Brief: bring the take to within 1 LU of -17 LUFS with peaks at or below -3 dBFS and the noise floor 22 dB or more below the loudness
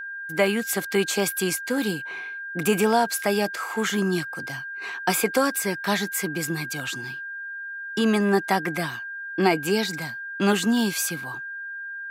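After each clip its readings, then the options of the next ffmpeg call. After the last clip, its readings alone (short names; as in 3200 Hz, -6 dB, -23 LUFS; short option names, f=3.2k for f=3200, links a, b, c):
steady tone 1600 Hz; tone level -32 dBFS; loudness -25.0 LUFS; peak -6.0 dBFS; loudness target -17.0 LUFS
-> -af "bandreject=f=1.6k:w=30"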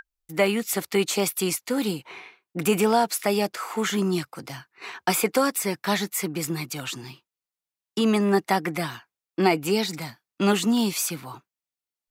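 steady tone none; loudness -24.5 LUFS; peak -6.0 dBFS; loudness target -17.0 LUFS
-> -af "volume=7.5dB,alimiter=limit=-3dB:level=0:latency=1"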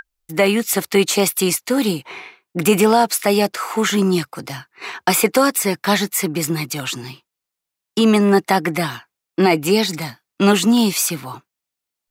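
loudness -17.5 LUFS; peak -3.0 dBFS; noise floor -84 dBFS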